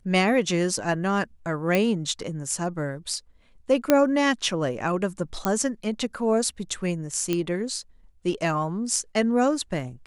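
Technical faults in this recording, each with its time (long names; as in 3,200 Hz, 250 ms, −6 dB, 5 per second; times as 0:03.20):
0:01.75: click −9 dBFS
0:03.90: click −4 dBFS
0:05.45: click −9 dBFS
0:07.33: click −11 dBFS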